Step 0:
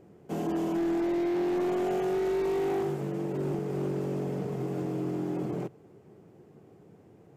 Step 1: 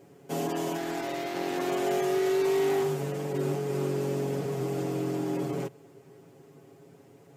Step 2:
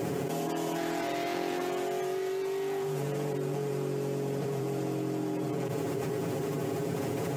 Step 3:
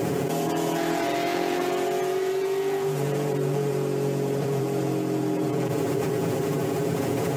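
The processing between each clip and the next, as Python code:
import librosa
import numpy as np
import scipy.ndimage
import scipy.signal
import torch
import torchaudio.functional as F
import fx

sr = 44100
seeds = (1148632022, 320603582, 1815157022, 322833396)

y1 = fx.highpass(x, sr, hz=150.0, slope=6)
y1 = fx.high_shelf(y1, sr, hz=2500.0, db=9.5)
y1 = y1 + 0.81 * np.pad(y1, (int(7.3 * sr / 1000.0), 0))[:len(y1)]
y2 = fx.env_flatten(y1, sr, amount_pct=100)
y2 = y2 * librosa.db_to_amplitude(-8.0)
y3 = y2 + 10.0 ** (-12.5 / 20.0) * np.pad(y2, (int(433 * sr / 1000.0), 0))[:len(y2)]
y3 = y3 * librosa.db_to_amplitude(6.5)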